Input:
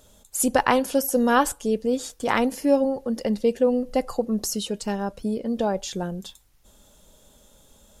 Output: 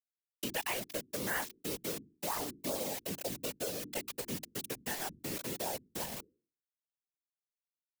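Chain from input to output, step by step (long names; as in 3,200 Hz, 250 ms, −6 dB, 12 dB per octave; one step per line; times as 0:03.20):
phase distortion by the signal itself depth 0.094 ms
soft clipping −16.5 dBFS, distortion −13 dB
auto-filter low-pass saw down 0.29 Hz 690–3,600 Hz
centre clipping without the shift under −28.5 dBFS
parametric band 1,300 Hz −5.5 dB 0.53 octaves
reversed playback
upward compression, threshold −42 dBFS
reversed playback
first-order pre-emphasis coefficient 0.9
mains-hum notches 50/100/150/200/250/300/350 Hz
random phases in short frames
multiband upward and downward compressor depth 70%
level +2 dB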